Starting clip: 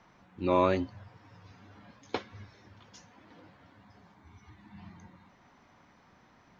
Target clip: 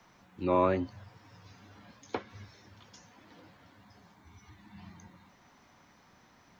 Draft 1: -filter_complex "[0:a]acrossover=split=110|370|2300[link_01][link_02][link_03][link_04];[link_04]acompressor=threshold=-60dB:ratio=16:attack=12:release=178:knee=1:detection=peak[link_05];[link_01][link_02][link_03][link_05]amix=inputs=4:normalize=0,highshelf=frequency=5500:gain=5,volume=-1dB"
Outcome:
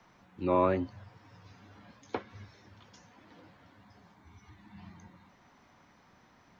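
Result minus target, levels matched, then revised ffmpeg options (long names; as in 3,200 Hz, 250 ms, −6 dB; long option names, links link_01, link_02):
8,000 Hz band −4.5 dB
-filter_complex "[0:a]acrossover=split=110|370|2300[link_01][link_02][link_03][link_04];[link_04]acompressor=threshold=-60dB:ratio=16:attack=12:release=178:knee=1:detection=peak[link_05];[link_01][link_02][link_03][link_05]amix=inputs=4:normalize=0,highshelf=frequency=5500:gain=13.5,volume=-1dB"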